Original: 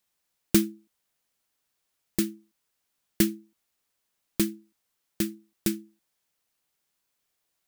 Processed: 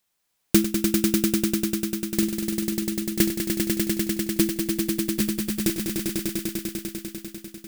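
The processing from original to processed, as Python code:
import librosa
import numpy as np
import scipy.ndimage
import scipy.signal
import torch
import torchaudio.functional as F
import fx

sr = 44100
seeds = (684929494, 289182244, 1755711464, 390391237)

p1 = fx.comb_fb(x, sr, f0_hz=690.0, decay_s=0.42, harmonics='all', damping=0.0, mix_pct=50)
p2 = p1 + fx.echo_swell(p1, sr, ms=99, loudest=5, wet_db=-5, dry=0)
y = p2 * 10.0 ** (8.5 / 20.0)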